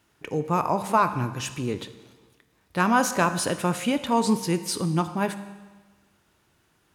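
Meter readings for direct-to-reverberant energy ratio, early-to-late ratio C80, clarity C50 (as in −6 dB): 10.0 dB, 13.5 dB, 12.0 dB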